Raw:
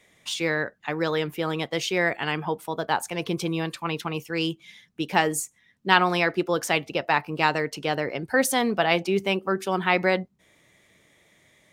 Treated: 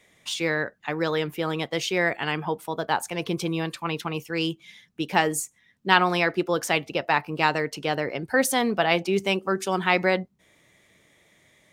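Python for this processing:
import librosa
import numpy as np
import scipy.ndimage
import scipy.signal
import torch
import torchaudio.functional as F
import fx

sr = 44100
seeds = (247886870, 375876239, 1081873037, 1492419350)

y = fx.peak_eq(x, sr, hz=7100.0, db=7.0, octaves=1.2, at=(9.13, 10.03))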